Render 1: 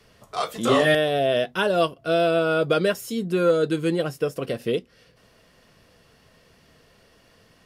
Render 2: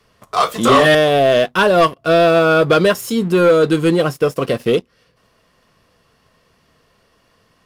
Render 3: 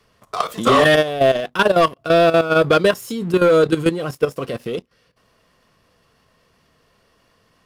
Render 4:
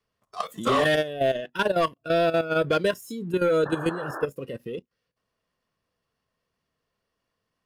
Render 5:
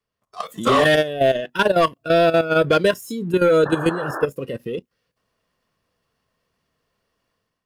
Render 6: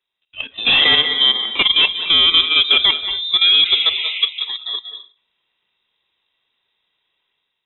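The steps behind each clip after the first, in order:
peaking EQ 1.1 kHz +7 dB 0.42 oct; waveshaping leveller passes 2; trim +2 dB
level held to a coarse grid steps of 12 dB
spectral noise reduction 12 dB; painted sound noise, 3.65–4.26 s, 270–1800 Hz -27 dBFS; trim -8.5 dB
level rider gain up to 10.5 dB; trim -3.5 dB
on a send at -9 dB: reverberation RT60 0.40 s, pre-delay 175 ms; on the sum: frequency inversion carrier 3.8 kHz; trim +2 dB

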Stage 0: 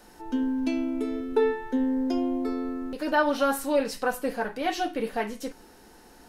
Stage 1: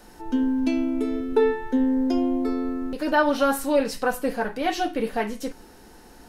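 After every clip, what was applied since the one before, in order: bass shelf 180 Hz +5 dB; trim +2.5 dB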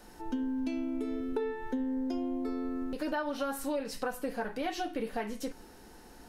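compression, threshold -26 dBFS, peak gain reduction 11 dB; trim -4.5 dB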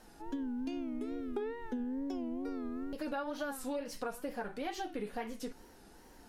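wow and flutter 120 cents; trim -4.5 dB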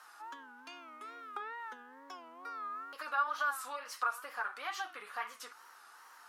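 resonant high-pass 1.2 kHz, resonance Q 5.9; trim +1 dB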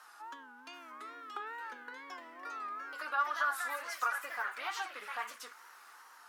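ever faster or slower copies 734 ms, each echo +3 st, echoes 3, each echo -6 dB

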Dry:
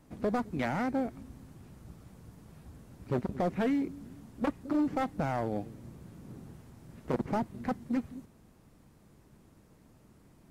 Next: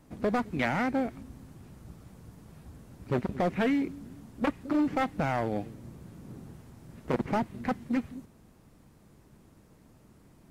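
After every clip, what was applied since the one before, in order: dynamic bell 2.4 kHz, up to +6 dB, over -54 dBFS, Q 0.91; trim +2 dB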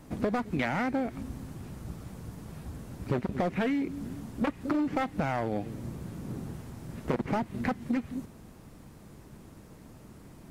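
compression 6:1, threshold -34 dBFS, peak gain reduction 10 dB; trim +7.5 dB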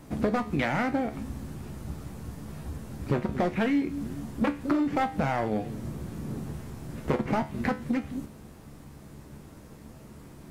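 feedback comb 72 Hz, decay 0.32 s, harmonics all, mix 70%; trim +8.5 dB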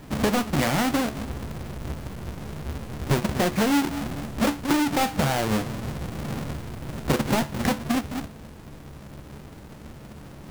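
square wave that keeps the level

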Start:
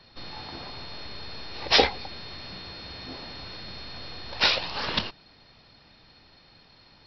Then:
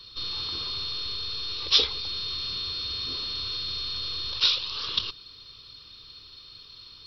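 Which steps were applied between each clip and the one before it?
FFT filter 110 Hz 0 dB, 190 Hz -11 dB, 440 Hz -2 dB, 750 Hz -23 dB, 1.1 kHz -7 dB, 1.9 kHz -12 dB, 3.5 kHz +12 dB, 5 kHz +6 dB, 7.6 kHz +12 dB; in parallel at +1 dB: compressor with a negative ratio -34 dBFS, ratio -0.5; on the sum: peaking EQ 1.2 kHz +10 dB 0.71 oct; trim -8 dB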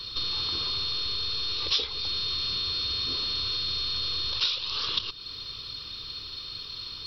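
compression 3:1, threshold -38 dBFS, peak gain reduction 17 dB; trim +9 dB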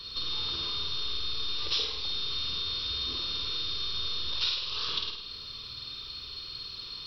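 on a send: flutter echo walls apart 8.8 m, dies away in 0.72 s; on the sum: flange 0.39 Hz, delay 4.3 ms, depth 1.1 ms, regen -79%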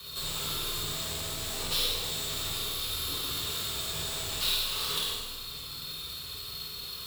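square wave that keeps the level; frequency shift +22 Hz; plate-style reverb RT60 1.2 s, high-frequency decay 0.95×, DRR -2.5 dB; trim -6 dB

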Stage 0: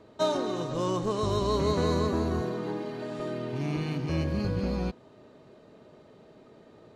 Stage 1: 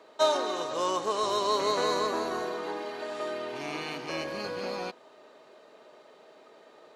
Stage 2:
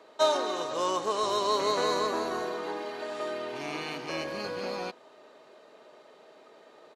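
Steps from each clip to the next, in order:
high-pass 590 Hz 12 dB/octave; trim +5 dB
resampled via 32 kHz

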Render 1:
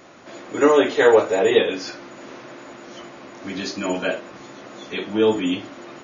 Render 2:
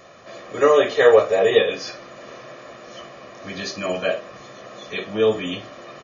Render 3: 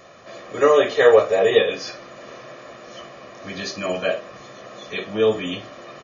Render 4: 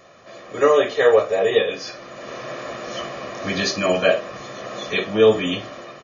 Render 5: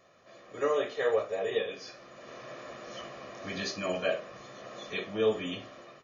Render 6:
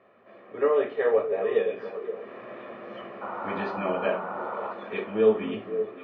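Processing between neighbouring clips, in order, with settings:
comb 1.7 ms, depth 62%; trim -1 dB
no audible change
level rider gain up to 11.5 dB; trim -2.5 dB
flange 0.8 Hz, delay 9.7 ms, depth 7.5 ms, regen -79%; trim -8.5 dB
painted sound noise, 3.21–4.73 s, 460–1500 Hz -38 dBFS; cabinet simulation 100–2600 Hz, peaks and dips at 150 Hz -8 dB, 220 Hz +8 dB, 410 Hz +7 dB, 880 Hz +4 dB; repeats whose band climbs or falls 261 ms, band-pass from 160 Hz, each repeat 1.4 oct, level -5.5 dB; trim +1.5 dB

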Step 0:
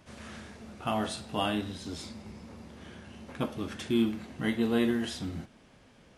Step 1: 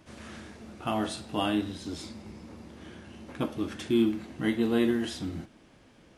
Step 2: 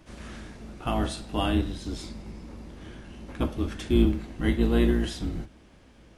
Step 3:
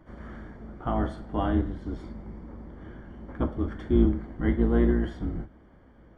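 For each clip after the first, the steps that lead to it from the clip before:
peaking EQ 320 Hz +8 dB 0.27 oct
octave divider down 2 oct, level +2 dB; trim +1 dB
Savitzky-Golay filter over 41 samples

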